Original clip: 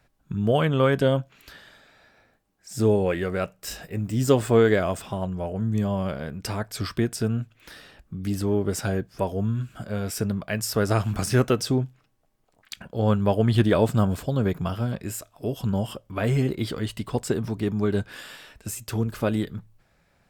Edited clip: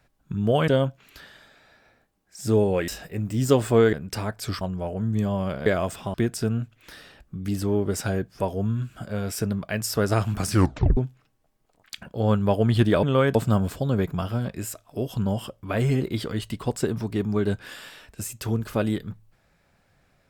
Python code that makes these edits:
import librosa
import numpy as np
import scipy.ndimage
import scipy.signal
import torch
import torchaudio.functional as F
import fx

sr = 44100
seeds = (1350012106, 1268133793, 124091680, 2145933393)

y = fx.edit(x, sr, fx.move(start_s=0.68, length_s=0.32, to_s=13.82),
    fx.cut(start_s=3.2, length_s=0.47),
    fx.swap(start_s=4.72, length_s=0.48, other_s=6.25, other_length_s=0.68),
    fx.tape_stop(start_s=11.29, length_s=0.47), tone=tone)